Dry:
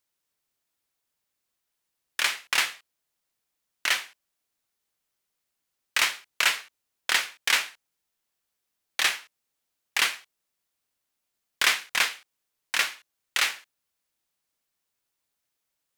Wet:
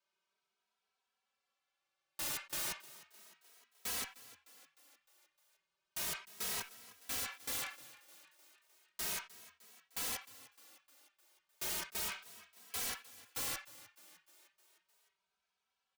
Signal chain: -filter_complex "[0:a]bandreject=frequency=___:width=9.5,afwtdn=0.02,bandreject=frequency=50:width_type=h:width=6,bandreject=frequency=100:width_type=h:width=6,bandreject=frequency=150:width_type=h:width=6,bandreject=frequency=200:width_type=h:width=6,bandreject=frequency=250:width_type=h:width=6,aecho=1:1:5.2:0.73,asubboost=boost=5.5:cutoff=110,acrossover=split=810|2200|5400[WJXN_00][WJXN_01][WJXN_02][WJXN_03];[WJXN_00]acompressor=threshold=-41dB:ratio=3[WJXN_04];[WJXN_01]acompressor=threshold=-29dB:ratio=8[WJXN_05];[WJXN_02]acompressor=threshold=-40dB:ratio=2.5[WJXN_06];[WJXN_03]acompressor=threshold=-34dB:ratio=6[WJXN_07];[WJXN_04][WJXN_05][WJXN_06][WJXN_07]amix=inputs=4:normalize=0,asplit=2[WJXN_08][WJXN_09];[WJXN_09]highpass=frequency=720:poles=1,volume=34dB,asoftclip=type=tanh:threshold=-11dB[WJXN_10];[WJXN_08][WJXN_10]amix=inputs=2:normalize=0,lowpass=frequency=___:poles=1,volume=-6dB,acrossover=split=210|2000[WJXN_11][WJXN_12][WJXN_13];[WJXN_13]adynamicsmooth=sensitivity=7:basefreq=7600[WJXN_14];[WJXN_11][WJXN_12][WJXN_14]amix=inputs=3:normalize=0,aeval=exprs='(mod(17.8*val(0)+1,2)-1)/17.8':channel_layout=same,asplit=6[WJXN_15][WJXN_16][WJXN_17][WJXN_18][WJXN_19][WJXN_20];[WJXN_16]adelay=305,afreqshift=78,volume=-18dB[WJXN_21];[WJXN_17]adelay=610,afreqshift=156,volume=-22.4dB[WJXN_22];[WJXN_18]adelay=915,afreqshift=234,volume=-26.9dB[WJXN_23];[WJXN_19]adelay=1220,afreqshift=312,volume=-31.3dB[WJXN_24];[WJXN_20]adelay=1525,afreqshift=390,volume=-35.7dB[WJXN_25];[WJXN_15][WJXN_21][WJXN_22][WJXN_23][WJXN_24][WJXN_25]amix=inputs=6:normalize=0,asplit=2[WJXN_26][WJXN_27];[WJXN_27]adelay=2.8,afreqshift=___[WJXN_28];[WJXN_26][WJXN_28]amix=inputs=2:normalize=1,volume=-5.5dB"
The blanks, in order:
1900, 2300, 0.34